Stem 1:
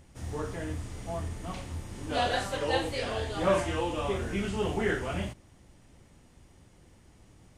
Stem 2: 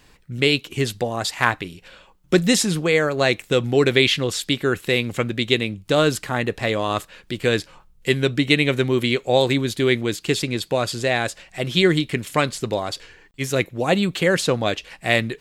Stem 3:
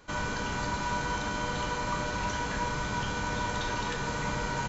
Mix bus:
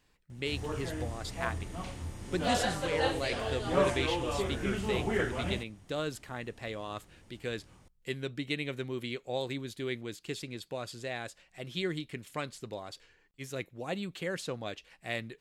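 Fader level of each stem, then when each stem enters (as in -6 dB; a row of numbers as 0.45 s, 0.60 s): -2.0 dB, -17.0 dB, mute; 0.30 s, 0.00 s, mute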